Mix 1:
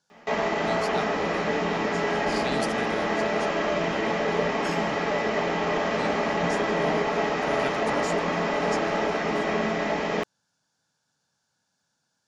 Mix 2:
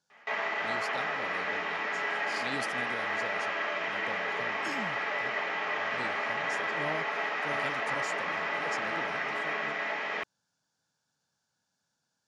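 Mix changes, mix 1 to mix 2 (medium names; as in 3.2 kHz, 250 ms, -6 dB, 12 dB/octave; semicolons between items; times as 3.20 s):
speech -5.0 dB; background: add band-pass filter 1.9 kHz, Q 1.2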